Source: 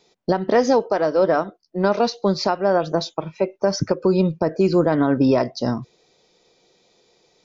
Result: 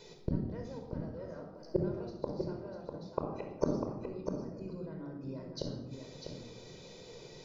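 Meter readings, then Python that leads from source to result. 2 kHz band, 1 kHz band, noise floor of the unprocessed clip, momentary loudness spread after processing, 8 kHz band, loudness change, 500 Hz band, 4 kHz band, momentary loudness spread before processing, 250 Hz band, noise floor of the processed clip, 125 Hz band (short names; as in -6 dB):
-26.5 dB, -24.0 dB, -62 dBFS, 13 LU, n/a, -19.5 dB, -20.0 dB, -20.0 dB, 8 LU, -18.0 dB, -52 dBFS, -13.5 dB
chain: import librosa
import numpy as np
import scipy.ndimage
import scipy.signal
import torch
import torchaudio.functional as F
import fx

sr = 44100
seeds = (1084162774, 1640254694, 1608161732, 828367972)

y = fx.low_shelf(x, sr, hz=220.0, db=9.0)
y = fx.gate_flip(y, sr, shuts_db=-19.0, range_db=-37)
y = y + 10.0 ** (-6.5 / 20.0) * np.pad(y, (int(648 * sr / 1000.0), 0))[:len(y)]
y = fx.room_shoebox(y, sr, seeds[0], volume_m3=3800.0, walls='furnished', distance_m=4.9)
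y = F.gain(torch.from_numpy(y), 1.5).numpy()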